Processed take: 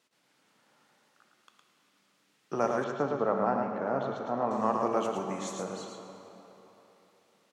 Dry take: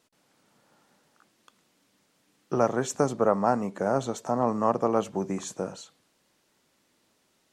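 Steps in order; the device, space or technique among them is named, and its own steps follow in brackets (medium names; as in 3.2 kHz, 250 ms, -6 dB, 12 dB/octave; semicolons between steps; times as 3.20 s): PA in a hall (high-pass 130 Hz 12 dB/octave; peaking EQ 2.4 kHz +6 dB 2.5 oct; delay 111 ms -5 dB; reverberation RT60 3.7 s, pre-delay 11 ms, DRR 5.5 dB); 2.84–4.51 s: distance through air 280 m; trim -7 dB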